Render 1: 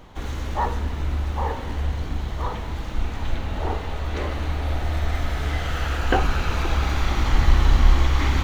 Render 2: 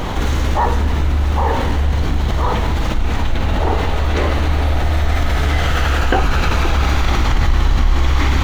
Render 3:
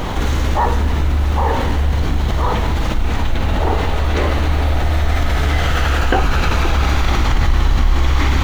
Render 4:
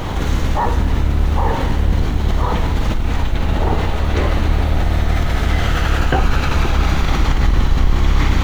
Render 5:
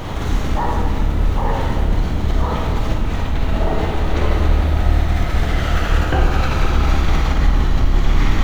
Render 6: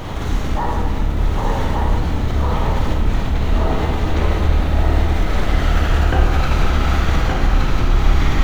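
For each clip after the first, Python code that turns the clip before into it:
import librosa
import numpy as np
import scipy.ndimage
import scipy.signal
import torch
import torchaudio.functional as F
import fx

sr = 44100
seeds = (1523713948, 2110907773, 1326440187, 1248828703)

y1 = fx.env_flatten(x, sr, amount_pct=70)
y1 = F.gain(torch.from_numpy(y1), -1.0).numpy()
y2 = fx.quant_dither(y1, sr, seeds[0], bits=8, dither='none')
y3 = fx.octave_divider(y2, sr, octaves=1, level_db=0.0)
y3 = F.gain(torch.from_numpy(y3), -2.0).numpy()
y4 = fx.rev_freeverb(y3, sr, rt60_s=1.5, hf_ratio=0.3, predelay_ms=5, drr_db=1.5)
y4 = F.gain(torch.from_numpy(y4), -4.0).numpy()
y5 = y4 + 10.0 ** (-3.5 / 20.0) * np.pad(y4, (int(1170 * sr / 1000.0), 0))[:len(y4)]
y5 = F.gain(torch.from_numpy(y5), -1.0).numpy()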